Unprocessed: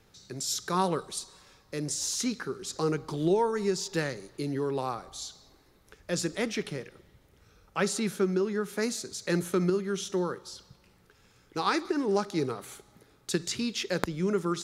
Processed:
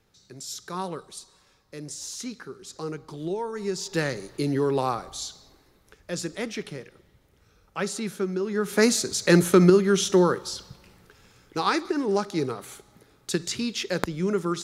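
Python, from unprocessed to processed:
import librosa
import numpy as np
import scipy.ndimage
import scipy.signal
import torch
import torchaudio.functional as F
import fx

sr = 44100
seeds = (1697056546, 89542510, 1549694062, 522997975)

y = fx.gain(x, sr, db=fx.line((3.43, -5.0), (4.17, 6.5), (5.0, 6.5), (6.13, -1.0), (8.39, -1.0), (8.8, 10.5), (10.44, 10.5), (11.85, 2.5)))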